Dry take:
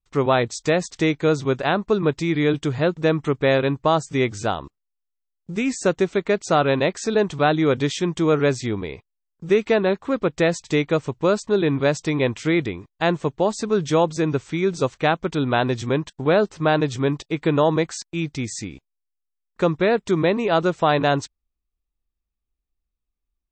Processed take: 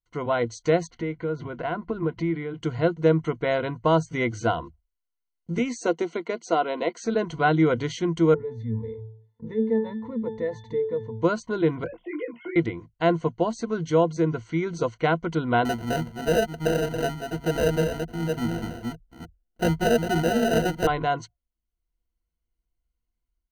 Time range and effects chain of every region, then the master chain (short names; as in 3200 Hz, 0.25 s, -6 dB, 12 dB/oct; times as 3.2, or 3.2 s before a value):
0.87–2.6 LPF 2800 Hz + notches 60/120/180 Hz + compressor 4:1, threshold -27 dBFS
5.58–6.98 HPF 240 Hz 24 dB/oct + bell 1600 Hz -6 dB 0.63 oct
8.34–11.22 octave resonator A, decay 0.27 s + fast leveller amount 50%
11.84–12.56 sine-wave speech + compressor, threshold -23 dBFS + detuned doubles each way 18 cents
15.65–20.87 reverse delay 0.3 s, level -6 dB + comb 4.6 ms, depth 32% + sample-rate reducer 1100 Hz
whole clip: ripple EQ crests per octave 1.9, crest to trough 14 dB; AGC gain up to 8 dB; high shelf 4100 Hz -8.5 dB; gain -8 dB